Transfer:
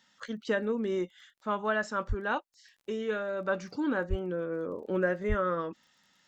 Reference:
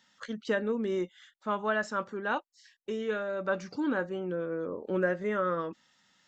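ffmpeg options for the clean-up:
-filter_complex "[0:a]adeclick=t=4,asplit=3[s0][s1][s2];[s0]afade=t=out:st=2.08:d=0.02[s3];[s1]highpass=f=140:w=0.5412,highpass=f=140:w=1.3066,afade=t=in:st=2.08:d=0.02,afade=t=out:st=2.2:d=0.02[s4];[s2]afade=t=in:st=2.2:d=0.02[s5];[s3][s4][s5]amix=inputs=3:normalize=0,asplit=3[s6][s7][s8];[s6]afade=t=out:st=4.09:d=0.02[s9];[s7]highpass=f=140:w=0.5412,highpass=f=140:w=1.3066,afade=t=in:st=4.09:d=0.02,afade=t=out:st=4.21:d=0.02[s10];[s8]afade=t=in:st=4.21:d=0.02[s11];[s9][s10][s11]amix=inputs=3:normalize=0,asplit=3[s12][s13][s14];[s12]afade=t=out:st=5.28:d=0.02[s15];[s13]highpass=f=140:w=0.5412,highpass=f=140:w=1.3066,afade=t=in:st=5.28:d=0.02,afade=t=out:st=5.4:d=0.02[s16];[s14]afade=t=in:st=5.4:d=0.02[s17];[s15][s16][s17]amix=inputs=3:normalize=0"

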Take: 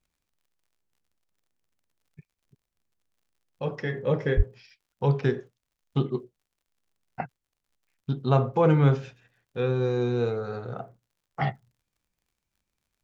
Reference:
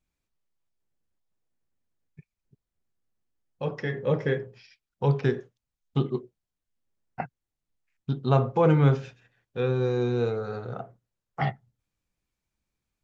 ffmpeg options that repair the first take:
-filter_complex "[0:a]adeclick=t=4,asplit=3[s0][s1][s2];[s0]afade=t=out:st=4.36:d=0.02[s3];[s1]highpass=f=140:w=0.5412,highpass=f=140:w=1.3066,afade=t=in:st=4.36:d=0.02,afade=t=out:st=4.48:d=0.02[s4];[s2]afade=t=in:st=4.48:d=0.02[s5];[s3][s4][s5]amix=inputs=3:normalize=0"

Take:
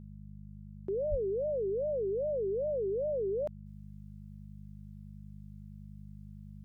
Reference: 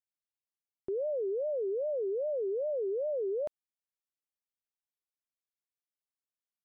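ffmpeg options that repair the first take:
-filter_complex "[0:a]bandreject=f=50.7:t=h:w=4,bandreject=f=101.4:t=h:w=4,bandreject=f=152.1:t=h:w=4,bandreject=f=202.8:t=h:w=4,asplit=3[s0][s1][s2];[s0]afade=t=out:st=1.1:d=0.02[s3];[s1]highpass=f=140:w=0.5412,highpass=f=140:w=1.3066,afade=t=in:st=1.1:d=0.02,afade=t=out:st=1.22:d=0.02[s4];[s2]afade=t=in:st=1.22:d=0.02[s5];[s3][s4][s5]amix=inputs=3:normalize=0,asetnsamples=n=441:p=0,asendcmd='3.66 volume volume -10.5dB',volume=1"

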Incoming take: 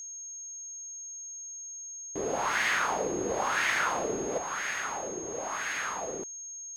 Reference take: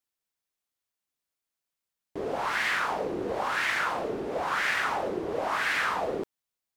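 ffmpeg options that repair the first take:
-af "bandreject=f=6500:w=30,asetnsamples=n=441:p=0,asendcmd='4.38 volume volume 6.5dB',volume=1"

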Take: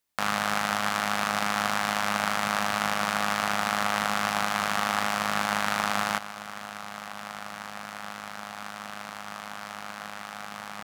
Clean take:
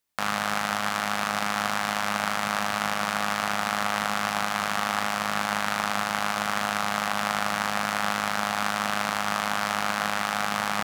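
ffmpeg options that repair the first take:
-af "asetnsamples=n=441:p=0,asendcmd='6.18 volume volume 12dB',volume=1"

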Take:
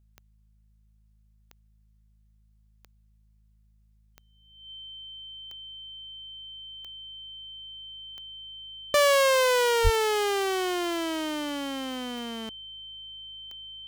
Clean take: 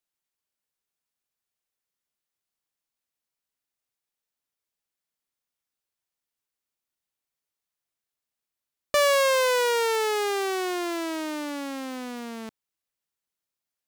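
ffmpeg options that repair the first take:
-filter_complex "[0:a]adeclick=t=4,bandreject=f=52.9:t=h:w=4,bandreject=f=105.8:t=h:w=4,bandreject=f=158.7:t=h:w=4,bandreject=f=211.6:t=h:w=4,bandreject=f=3100:w=30,asplit=3[s0][s1][s2];[s0]afade=t=out:st=9.83:d=0.02[s3];[s1]highpass=f=140:w=0.5412,highpass=f=140:w=1.3066,afade=t=in:st=9.83:d=0.02,afade=t=out:st=9.95:d=0.02[s4];[s2]afade=t=in:st=9.95:d=0.02[s5];[s3][s4][s5]amix=inputs=3:normalize=0"

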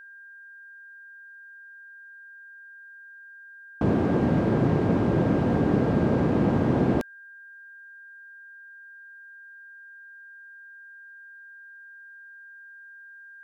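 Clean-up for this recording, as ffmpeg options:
-af "bandreject=f=1600:w=30"

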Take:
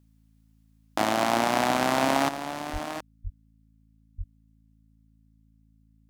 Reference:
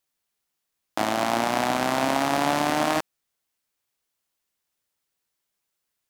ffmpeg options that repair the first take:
-filter_complex "[0:a]bandreject=f=54.5:t=h:w=4,bandreject=f=109:t=h:w=4,bandreject=f=163.5:t=h:w=4,bandreject=f=218:t=h:w=4,bandreject=f=272.5:t=h:w=4,asplit=3[s0][s1][s2];[s0]afade=t=out:st=2.72:d=0.02[s3];[s1]highpass=f=140:w=0.5412,highpass=f=140:w=1.3066,afade=t=in:st=2.72:d=0.02,afade=t=out:st=2.84:d=0.02[s4];[s2]afade=t=in:st=2.84:d=0.02[s5];[s3][s4][s5]amix=inputs=3:normalize=0,asplit=3[s6][s7][s8];[s6]afade=t=out:st=3.23:d=0.02[s9];[s7]highpass=f=140:w=0.5412,highpass=f=140:w=1.3066,afade=t=in:st=3.23:d=0.02,afade=t=out:st=3.35:d=0.02[s10];[s8]afade=t=in:st=3.35:d=0.02[s11];[s9][s10][s11]amix=inputs=3:normalize=0,asplit=3[s12][s13][s14];[s12]afade=t=out:st=4.17:d=0.02[s15];[s13]highpass=f=140:w=0.5412,highpass=f=140:w=1.3066,afade=t=in:st=4.17:d=0.02,afade=t=out:st=4.29:d=0.02[s16];[s14]afade=t=in:st=4.29:d=0.02[s17];[s15][s16][s17]amix=inputs=3:normalize=0,asetnsamples=n=441:p=0,asendcmd='2.29 volume volume 11dB',volume=1"

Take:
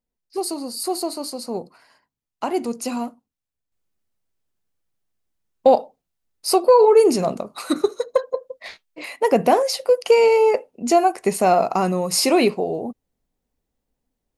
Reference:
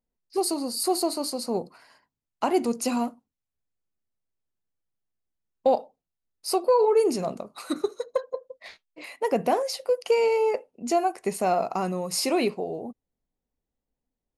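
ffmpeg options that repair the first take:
-af "asetnsamples=n=441:p=0,asendcmd='3.72 volume volume -7.5dB',volume=1"

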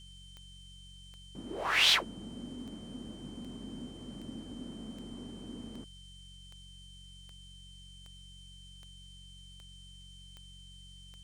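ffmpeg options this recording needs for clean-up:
-af "adeclick=t=4,bandreject=f=45.9:t=h:w=4,bandreject=f=91.8:t=h:w=4,bandreject=f=137.7:t=h:w=4,bandreject=f=183.6:t=h:w=4,bandreject=f=3100:w=30,afftdn=nr=30:nf=-52"

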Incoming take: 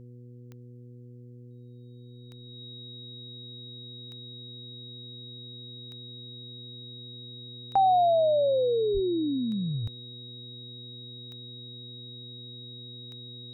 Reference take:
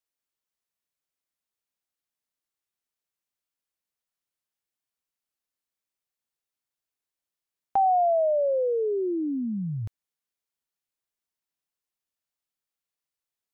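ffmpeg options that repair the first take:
-filter_complex "[0:a]adeclick=t=4,bandreject=f=121.9:t=h:w=4,bandreject=f=243.8:t=h:w=4,bandreject=f=365.7:t=h:w=4,bandreject=f=487.6:t=h:w=4,bandreject=f=3800:w=30,asplit=3[s0][s1][s2];[s0]afade=t=out:st=8.93:d=0.02[s3];[s1]highpass=f=140:w=0.5412,highpass=f=140:w=1.3066,afade=t=in:st=8.93:d=0.02,afade=t=out:st=9.05:d=0.02[s4];[s2]afade=t=in:st=9.05:d=0.02[s5];[s3][s4][s5]amix=inputs=3:normalize=0"

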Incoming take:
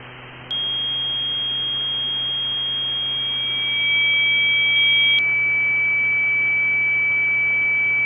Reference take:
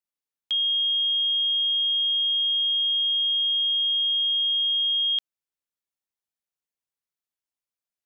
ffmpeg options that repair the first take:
-af "bandreject=f=125.4:t=h:w=4,bandreject=f=250.8:t=h:w=4,bandreject=f=376.2:t=h:w=4,bandreject=f=501.6:t=h:w=4,bandreject=f=2300:w=30,afwtdn=0.028,asetnsamples=n=441:p=0,asendcmd='4.76 volume volume -4.5dB',volume=1"

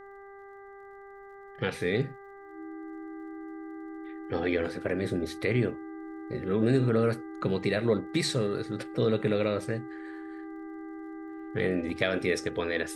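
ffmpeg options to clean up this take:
-af "adeclick=t=4,bandreject=f=396.6:t=h:w=4,bandreject=f=793.2:t=h:w=4,bandreject=f=1189.8:t=h:w=4,bandreject=f=1586.4:t=h:w=4,bandreject=f=1983:t=h:w=4,bandreject=f=320:w=30,agate=range=0.0891:threshold=0.01"

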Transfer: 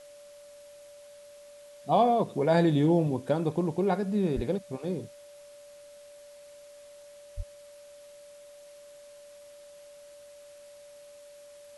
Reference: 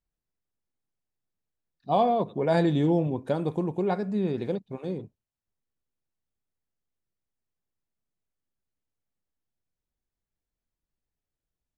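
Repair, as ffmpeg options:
-filter_complex "[0:a]bandreject=f=580:w=30,asplit=3[s0][s1][s2];[s0]afade=t=out:st=4.35:d=0.02[s3];[s1]highpass=f=140:w=0.5412,highpass=f=140:w=1.3066,afade=t=in:st=4.35:d=0.02,afade=t=out:st=4.47:d=0.02[s4];[s2]afade=t=in:st=4.47:d=0.02[s5];[s3][s4][s5]amix=inputs=3:normalize=0,asplit=3[s6][s7][s8];[s6]afade=t=out:st=7.36:d=0.02[s9];[s7]highpass=f=140:w=0.5412,highpass=f=140:w=1.3066,afade=t=in:st=7.36:d=0.02,afade=t=out:st=7.48:d=0.02[s10];[s8]afade=t=in:st=7.48:d=0.02[s11];[s9][s10][s11]amix=inputs=3:normalize=0,agate=range=0.0891:threshold=0.00708"

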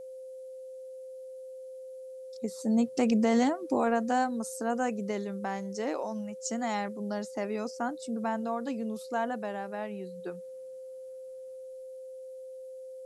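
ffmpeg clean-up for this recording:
-af "bandreject=f=520:w=30,agate=range=0.0891:threshold=0.0158"

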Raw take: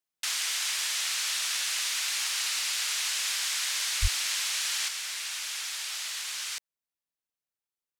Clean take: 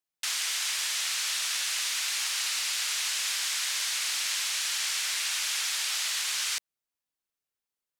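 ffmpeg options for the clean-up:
-filter_complex "[0:a]asplit=3[s0][s1][s2];[s0]afade=t=out:st=4.01:d=0.02[s3];[s1]highpass=f=140:w=0.5412,highpass=f=140:w=1.3066,afade=t=in:st=4.01:d=0.02,afade=t=out:st=4.13:d=0.02[s4];[s2]afade=t=in:st=4.13:d=0.02[s5];[s3][s4][s5]amix=inputs=3:normalize=0,asetnsamples=n=441:p=0,asendcmd='4.88 volume volume 5dB',volume=1"

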